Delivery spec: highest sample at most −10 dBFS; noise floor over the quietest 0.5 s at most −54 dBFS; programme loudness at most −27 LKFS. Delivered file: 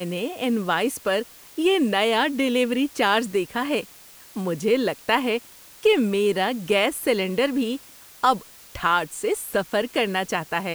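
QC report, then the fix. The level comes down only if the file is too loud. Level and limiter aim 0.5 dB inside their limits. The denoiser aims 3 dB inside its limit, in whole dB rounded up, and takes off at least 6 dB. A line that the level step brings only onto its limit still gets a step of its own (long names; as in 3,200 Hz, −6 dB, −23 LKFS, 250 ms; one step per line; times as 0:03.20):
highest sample −5.0 dBFS: out of spec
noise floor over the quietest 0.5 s −47 dBFS: out of spec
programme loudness −23.0 LKFS: out of spec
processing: broadband denoise 6 dB, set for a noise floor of −47 dBFS
level −4.5 dB
brickwall limiter −10.5 dBFS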